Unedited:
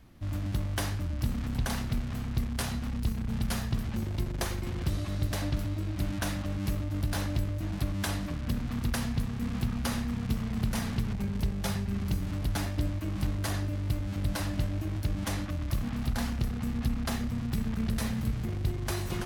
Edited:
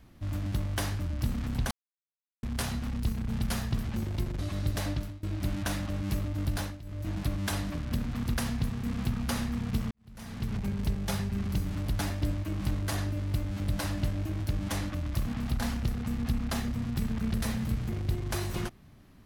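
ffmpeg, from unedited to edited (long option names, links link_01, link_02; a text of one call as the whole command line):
ffmpeg -i in.wav -filter_complex "[0:a]asplit=8[link_01][link_02][link_03][link_04][link_05][link_06][link_07][link_08];[link_01]atrim=end=1.71,asetpts=PTS-STARTPTS,afade=type=out:start_time=1.706:duration=0.004:curve=hsin[link_09];[link_02]atrim=start=1.71:end=2.43,asetpts=PTS-STARTPTS,volume=0[link_10];[link_03]atrim=start=2.43:end=4.392,asetpts=PTS-STARTPTS,afade=type=in:duration=0.004:curve=hsin[link_11];[link_04]atrim=start=4.948:end=5.79,asetpts=PTS-STARTPTS,afade=type=out:start_time=0.502:duration=0.34:silence=0.0749894[link_12];[link_05]atrim=start=5.79:end=7.36,asetpts=PTS-STARTPTS,afade=type=in:duration=0.004:curve=hsin:silence=0.0749894,afade=type=out:start_time=1.32:duration=0.25:silence=0.141254[link_13];[link_06]atrim=start=7.36:end=7.39,asetpts=PTS-STARTPTS,volume=-17dB[link_14];[link_07]atrim=start=7.39:end=10.47,asetpts=PTS-STARTPTS,afade=type=in:duration=0.25:silence=0.141254,afade=type=out:start_time=3.076:duration=0.004:curve=hsin[link_15];[link_08]atrim=start=10.47,asetpts=PTS-STARTPTS,afade=type=in:duration=0.64:curve=qua[link_16];[link_09][link_10][link_11]concat=n=3:v=0:a=1[link_17];[link_12][link_13][link_14][link_15][link_16]concat=n=5:v=0:a=1[link_18];[link_17][link_18]acrossfade=duration=0.004:curve1=hsin:curve2=hsin" out.wav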